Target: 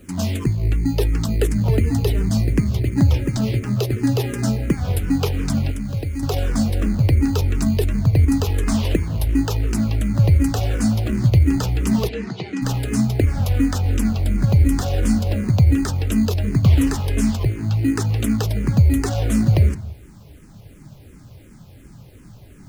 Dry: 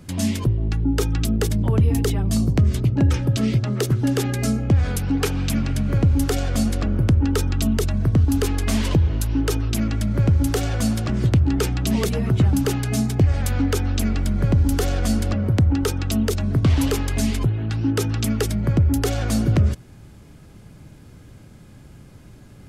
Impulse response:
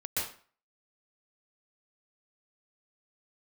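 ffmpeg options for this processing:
-filter_complex "[0:a]asplit=2[a][b];[b]acrusher=samples=20:mix=1:aa=0.000001,volume=-4dB[c];[a][c]amix=inputs=2:normalize=0,asettb=1/sr,asplit=3[d][e][f];[d]atrim=end=5.704[g];[e]atrim=start=5.7:end=6.23,asetpts=PTS-STARTPTS,afade=t=in:d=0.004:c=qsin,afade=t=out:st=0.526:d=0.004:c=qsin,acrossover=split=870|2000[h][i][j];[h]acompressor=threshold=-21dB:ratio=4[k];[i]acompressor=threshold=-51dB:ratio=4[l];[j]acompressor=threshold=-39dB:ratio=4[m];[k][l][m]amix=inputs=3:normalize=0[n];[f]atrim=start=6.226[o];[g][n]acrossfade=d=0.004:c1=hsin:c2=qsin[p];[p][o]acrossfade=d=0.004:c1=qsin:c2=hsin,acrusher=bits=8:mix=0:aa=0.000001,asplit=3[q][r][s];[q]afade=t=out:st=12.07:d=0.02[t];[r]highpass=f=210:w=0.5412,highpass=f=210:w=1.3066,equalizer=f=260:t=q:w=4:g=-9,equalizer=f=600:t=q:w=4:g=-10,equalizer=f=1.2k:t=q:w=4:g=-5,lowpass=f=5.7k:w=0.5412,lowpass=f=5.7k:w=1.3066,afade=t=in:st=12.07:d=0.02,afade=t=out:st=12.61:d=0.02[u];[s]afade=t=in:st=12.61:d=0.02[v];[t][u][v]amix=inputs=3:normalize=0,asplit=2[w][x];[1:a]atrim=start_sample=2205,lowpass=4.5k,adelay=41[y];[x][y]afir=irnorm=-1:irlink=0,volume=-21dB[z];[w][z]amix=inputs=2:normalize=0,asplit=2[aa][ab];[ab]afreqshift=-2.8[ac];[aa][ac]amix=inputs=2:normalize=1"

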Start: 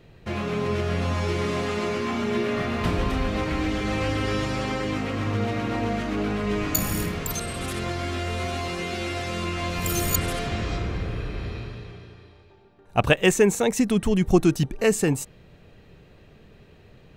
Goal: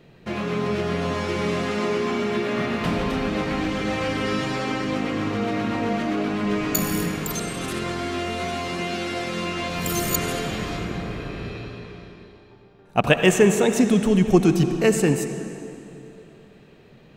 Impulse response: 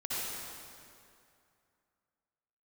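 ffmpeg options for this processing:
-filter_complex "[0:a]lowshelf=f=120:t=q:w=1.5:g=-8,asplit=2[a][b];[1:a]atrim=start_sample=2205,asetrate=38808,aresample=44100,lowpass=7.8k[c];[b][c]afir=irnorm=-1:irlink=0,volume=-12dB[d];[a][d]amix=inputs=2:normalize=0"

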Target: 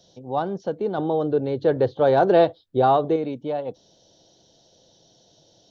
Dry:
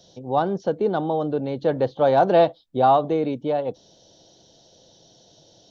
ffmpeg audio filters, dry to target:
-filter_complex "[0:a]asettb=1/sr,asplit=3[a][b][c];[a]atrim=end=0.984[d];[b]atrim=start=0.98:end=3.16,asetpts=PTS-STARTPTS,afade=t=in:d=0.004:c=qsin,afade=t=out:st=2.176:d=0.004:c=qsin,equalizer=f=100:t=o:w=0.67:g=12,equalizer=f=400:t=o:w=0.67:g=9,equalizer=f=1.6k:t=o:w=0.67:g=5,equalizer=f=4k:t=o:w=0.67:g=3[e];[c]atrim=start=3.156[f];[d][e]acrossfade=d=0.004:c1=hsin:c2=qsin[g];[g][f]acrossfade=d=0.004:c1=qsin:c2=hsin,volume=-3.5dB"

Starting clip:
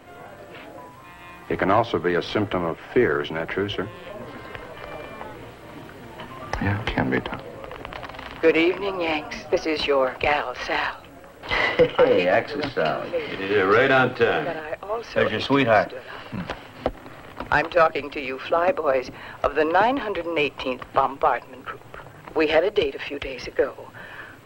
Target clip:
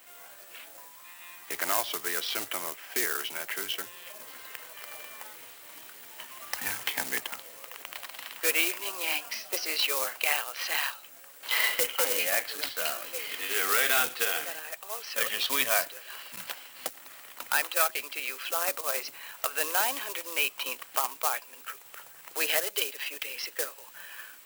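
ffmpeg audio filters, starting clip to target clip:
-af "acrusher=bits=4:mode=log:mix=0:aa=0.000001,aderivative,volume=6dB"

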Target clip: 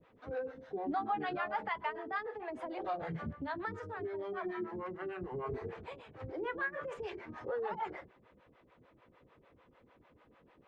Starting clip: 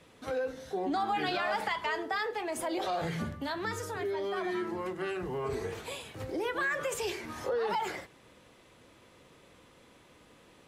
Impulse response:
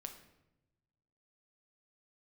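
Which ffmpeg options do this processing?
-filter_complex "[0:a]lowpass=1.8k,bandreject=f=46.96:t=h:w=4,bandreject=f=93.92:t=h:w=4,bandreject=f=140.88:t=h:w=4,bandreject=f=187.84:t=h:w=4,bandreject=f=234.8:t=h:w=4,bandreject=f=281.76:t=h:w=4,bandreject=f=328.72:t=h:w=4,bandreject=f=375.68:t=h:w=4,acrossover=split=470[a][b];[a]aeval=exprs='val(0)*(1-1/2+1/2*cos(2*PI*6.7*n/s))':c=same[c];[b]aeval=exprs='val(0)*(1-1/2-1/2*cos(2*PI*6.7*n/s))':c=same[d];[c][d]amix=inputs=2:normalize=0"

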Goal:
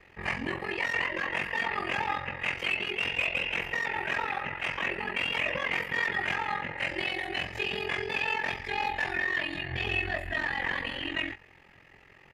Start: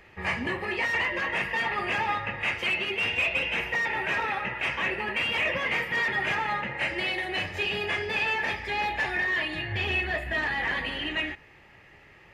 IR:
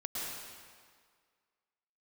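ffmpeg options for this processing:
-filter_complex "[0:a]aeval=exprs='val(0)*sin(2*PI*22*n/s)':c=same,asplit=2[a][b];[b]adelay=21,volume=-14dB[c];[a][c]amix=inputs=2:normalize=0"

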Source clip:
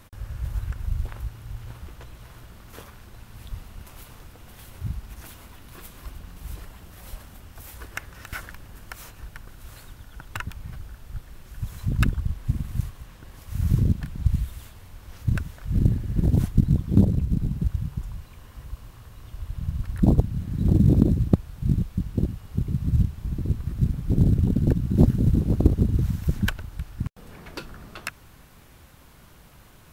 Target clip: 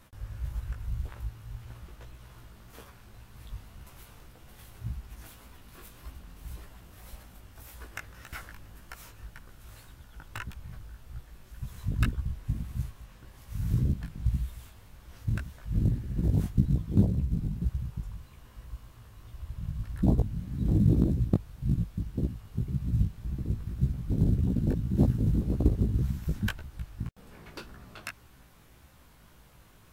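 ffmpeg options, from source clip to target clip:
-af "flanger=delay=15:depth=4.5:speed=1.8,volume=-3dB"

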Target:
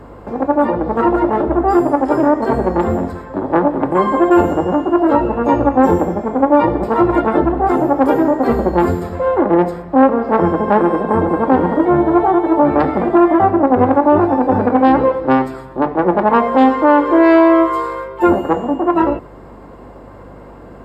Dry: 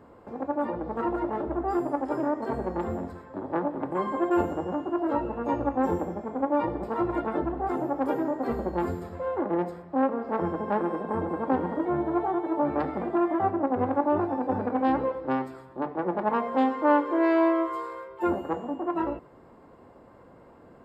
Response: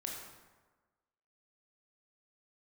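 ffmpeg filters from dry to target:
-af "aeval=exprs='val(0)+0.00158*(sin(2*PI*50*n/s)+sin(2*PI*2*50*n/s)/2+sin(2*PI*3*50*n/s)/3+sin(2*PI*4*50*n/s)/4+sin(2*PI*5*50*n/s)/5)':c=same,alimiter=level_in=15.5dB:limit=-1dB:release=50:level=0:latency=1,volume=-1dB" -ar 48000 -c:a libopus -b:a 256k

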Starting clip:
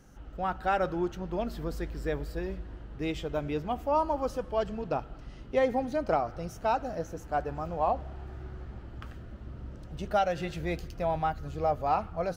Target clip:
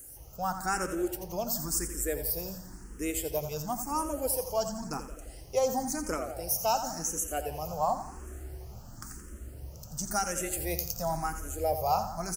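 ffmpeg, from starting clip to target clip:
-filter_complex "[0:a]asettb=1/sr,asplit=3[a][b][c];[a]atrim=end=6.634[d];[b]atrim=start=6.63:end=7.63,asetpts=PTS-STARTPTS,afade=t=in:d=0.004:c=qsin,afade=t=out:st=0.996:d=0.004:c=qsin,equalizer=f=2.9k:t=o:w=0.27:g=13.5[e];[c]atrim=start=7.626[f];[d][e]acrossfade=d=0.004:c1=hsin:c2=qsin[g];[g][f]acrossfade=d=0.004:c1=qsin:c2=hsin,acrossover=split=2500[h][i];[i]aexciter=amount=14.7:drive=8.6:freq=5.6k[j];[h][j]amix=inputs=2:normalize=0,aecho=1:1:86|172|258|344|430|516:0.316|0.177|0.0992|0.0555|0.0311|0.0174,asplit=2[k][l];[l]afreqshift=0.95[m];[k][m]amix=inputs=2:normalize=1"

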